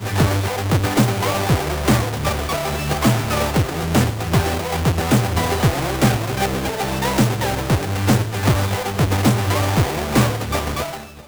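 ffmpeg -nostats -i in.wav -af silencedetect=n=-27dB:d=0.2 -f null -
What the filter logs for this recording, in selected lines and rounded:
silence_start: 10.97
silence_end: 11.28 | silence_duration: 0.31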